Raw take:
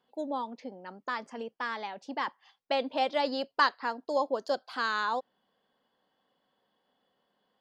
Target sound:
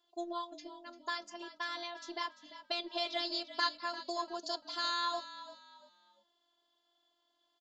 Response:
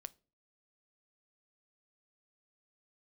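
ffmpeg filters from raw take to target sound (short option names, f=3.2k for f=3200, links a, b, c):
-filter_complex "[0:a]aexciter=amount=2:drive=4.2:freq=3.3k,asplit=2[a][b];[b]alimiter=limit=-22.5dB:level=0:latency=1:release=141,volume=2dB[c];[a][c]amix=inputs=2:normalize=0,afftfilt=real='hypot(re,im)*cos(PI*b)':imag='0':win_size=512:overlap=0.75,bass=f=250:g=-7,treble=f=4k:g=9,asplit=2[d][e];[e]asplit=3[f][g][h];[f]adelay=344,afreqshift=-44,volume=-14dB[i];[g]adelay=688,afreqshift=-88,volume=-23.9dB[j];[h]adelay=1032,afreqshift=-132,volume=-33.8dB[k];[i][j][k]amix=inputs=3:normalize=0[l];[d][l]amix=inputs=2:normalize=0,aresample=16000,aresample=44100,volume=-8dB"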